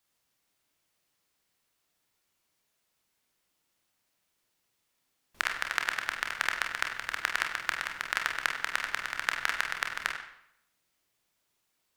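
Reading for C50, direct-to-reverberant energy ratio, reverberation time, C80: 5.5 dB, 2.0 dB, 0.75 s, 8.0 dB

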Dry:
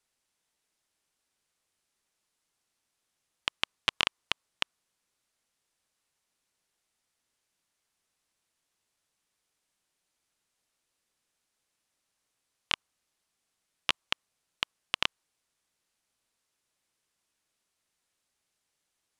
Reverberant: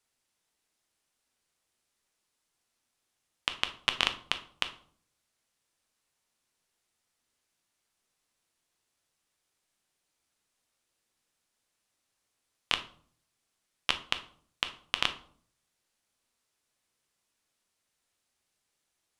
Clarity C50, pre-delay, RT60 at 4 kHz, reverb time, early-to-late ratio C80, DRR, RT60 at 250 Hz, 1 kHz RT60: 13.5 dB, 9 ms, 0.35 s, 0.55 s, 18.0 dB, 8.0 dB, 0.70 s, 0.50 s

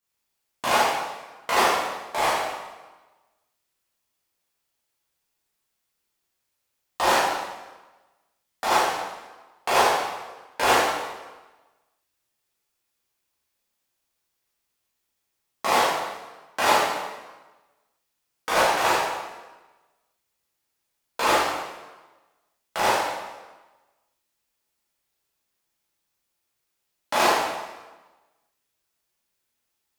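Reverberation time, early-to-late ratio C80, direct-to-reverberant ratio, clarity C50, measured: 1.2 s, 2.0 dB, -10.0 dB, -1.5 dB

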